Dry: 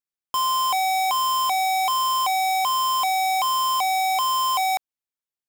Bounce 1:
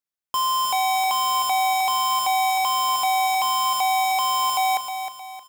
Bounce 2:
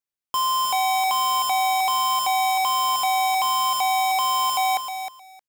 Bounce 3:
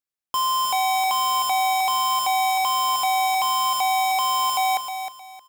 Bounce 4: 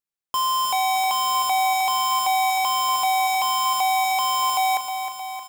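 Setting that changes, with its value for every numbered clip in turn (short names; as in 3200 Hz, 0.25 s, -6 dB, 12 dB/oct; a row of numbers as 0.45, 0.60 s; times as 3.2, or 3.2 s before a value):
feedback echo, feedback: 40, 16, 27, 62%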